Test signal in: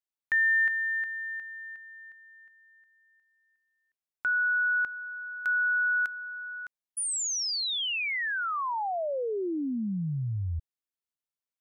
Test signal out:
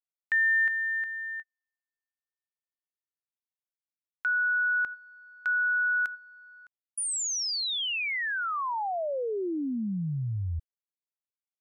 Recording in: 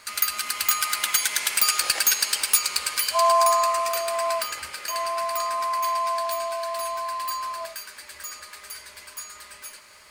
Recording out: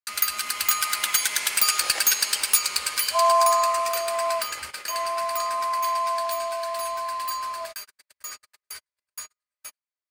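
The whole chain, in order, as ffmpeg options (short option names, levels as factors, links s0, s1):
-af "agate=range=0.00282:threshold=0.0141:ratio=16:release=109:detection=rms"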